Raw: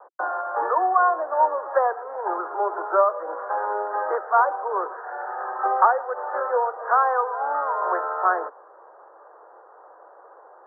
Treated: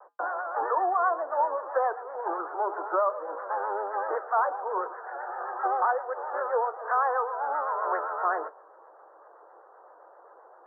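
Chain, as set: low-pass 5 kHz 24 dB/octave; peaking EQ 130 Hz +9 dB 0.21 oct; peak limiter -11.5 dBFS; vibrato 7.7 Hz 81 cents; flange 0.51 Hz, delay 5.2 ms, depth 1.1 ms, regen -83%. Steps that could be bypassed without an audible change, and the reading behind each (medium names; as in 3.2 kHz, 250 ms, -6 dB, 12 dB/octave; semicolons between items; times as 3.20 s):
low-pass 5 kHz: input has nothing above 1.9 kHz; peaking EQ 130 Hz: input has nothing below 300 Hz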